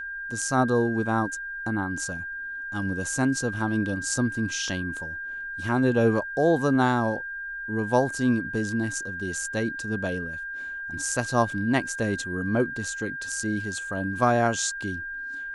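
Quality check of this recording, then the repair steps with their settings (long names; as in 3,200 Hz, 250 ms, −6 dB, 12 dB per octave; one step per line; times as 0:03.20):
whistle 1,600 Hz −32 dBFS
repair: notch filter 1,600 Hz, Q 30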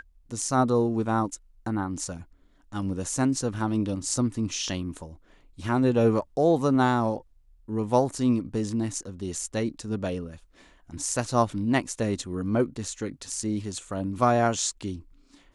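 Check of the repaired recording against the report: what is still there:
none of them is left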